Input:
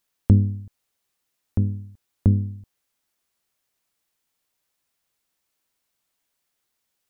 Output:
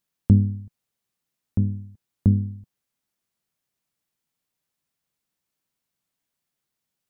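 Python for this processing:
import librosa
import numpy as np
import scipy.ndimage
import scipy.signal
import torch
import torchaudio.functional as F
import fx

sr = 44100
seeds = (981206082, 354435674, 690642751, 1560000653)

y = fx.peak_eq(x, sr, hz=160.0, db=9.5, octaves=1.5)
y = y * 10.0 ** (-6.0 / 20.0)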